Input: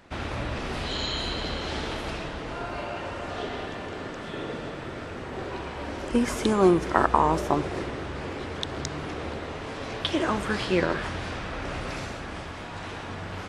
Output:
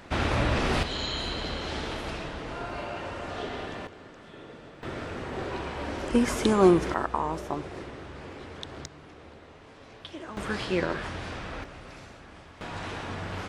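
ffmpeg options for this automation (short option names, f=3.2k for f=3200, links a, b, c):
-af "asetnsamples=n=441:p=0,asendcmd='0.83 volume volume -2dB;3.87 volume volume -12dB;4.83 volume volume 0.5dB;6.94 volume volume -8dB;8.86 volume volume -15dB;10.37 volume volume -3.5dB;11.64 volume volume -12dB;12.61 volume volume 0.5dB',volume=6dB"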